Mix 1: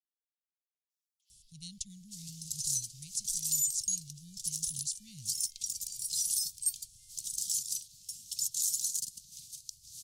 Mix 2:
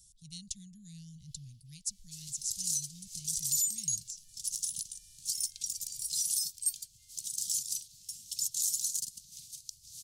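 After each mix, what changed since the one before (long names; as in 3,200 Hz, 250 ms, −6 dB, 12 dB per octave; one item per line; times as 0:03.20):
speech: entry −1.30 s
master: add parametric band 1,600 Hz +12 dB 0.39 octaves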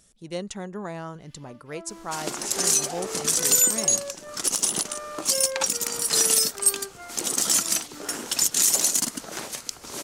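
first sound: remove high-pass filter 910 Hz 24 dB per octave
second sound +11.0 dB
master: remove inverse Chebyshev band-stop filter 420–1,300 Hz, stop band 70 dB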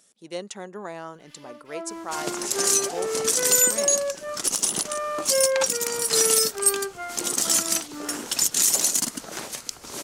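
speech: add high-pass filter 280 Hz 12 dB per octave
first sound +8.5 dB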